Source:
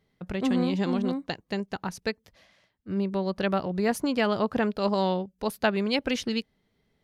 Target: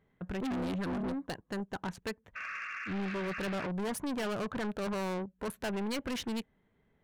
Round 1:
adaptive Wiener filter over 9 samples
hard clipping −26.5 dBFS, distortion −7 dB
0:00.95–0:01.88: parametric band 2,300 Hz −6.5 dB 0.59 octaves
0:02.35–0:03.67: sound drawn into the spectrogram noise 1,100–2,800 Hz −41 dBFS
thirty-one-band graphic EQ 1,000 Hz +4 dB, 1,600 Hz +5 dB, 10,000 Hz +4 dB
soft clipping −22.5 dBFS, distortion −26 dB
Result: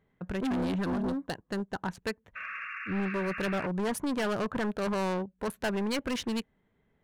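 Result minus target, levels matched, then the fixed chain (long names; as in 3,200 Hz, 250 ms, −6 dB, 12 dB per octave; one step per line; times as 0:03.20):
soft clipping: distortion −13 dB
adaptive Wiener filter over 9 samples
hard clipping −26.5 dBFS, distortion −7 dB
0:00.95–0:01.88: parametric band 2,300 Hz −6.5 dB 0.59 octaves
0:02.35–0:03.67: sound drawn into the spectrogram noise 1,100–2,800 Hz −41 dBFS
thirty-one-band graphic EQ 1,000 Hz +4 dB, 1,600 Hz +5 dB, 10,000 Hz +4 dB
soft clipping −32 dBFS, distortion −13 dB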